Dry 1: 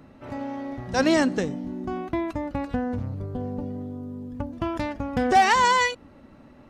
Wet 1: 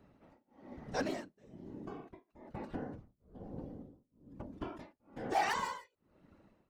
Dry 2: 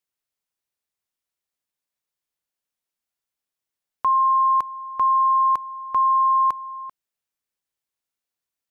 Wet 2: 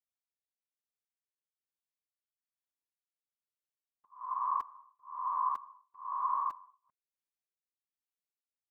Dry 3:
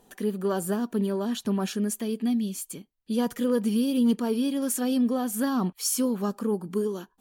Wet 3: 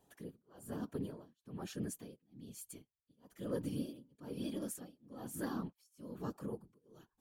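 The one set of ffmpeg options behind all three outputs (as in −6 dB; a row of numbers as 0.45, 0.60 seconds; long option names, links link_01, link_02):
-af "aeval=exprs='0.237*(abs(mod(val(0)/0.237+3,4)-2)-1)':channel_layout=same,afftfilt=real='hypot(re,im)*cos(2*PI*random(0))':imag='hypot(re,im)*sin(2*PI*random(1))':win_size=512:overlap=0.75,tremolo=f=1.1:d=0.99,volume=-7dB"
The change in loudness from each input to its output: −15.5, −15.5, −17.5 LU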